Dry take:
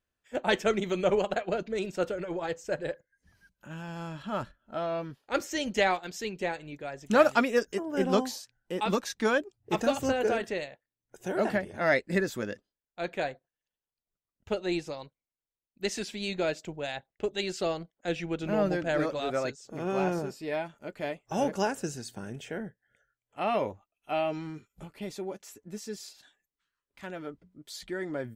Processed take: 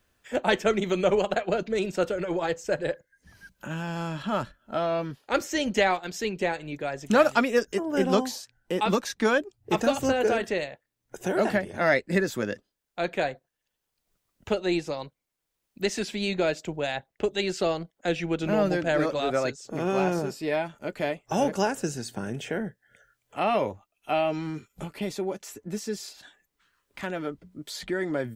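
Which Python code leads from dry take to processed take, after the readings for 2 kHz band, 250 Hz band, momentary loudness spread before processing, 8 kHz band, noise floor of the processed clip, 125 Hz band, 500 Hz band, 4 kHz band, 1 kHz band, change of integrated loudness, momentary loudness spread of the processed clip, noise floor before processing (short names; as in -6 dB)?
+3.5 dB, +4.0 dB, 15 LU, +4.0 dB, -82 dBFS, +4.5 dB, +3.5 dB, +3.5 dB, +3.5 dB, +3.5 dB, 11 LU, under -85 dBFS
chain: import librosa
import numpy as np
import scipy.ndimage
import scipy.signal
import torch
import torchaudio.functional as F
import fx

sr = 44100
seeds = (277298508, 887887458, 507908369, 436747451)

y = fx.band_squash(x, sr, depth_pct=40)
y = y * librosa.db_to_amplitude(4.0)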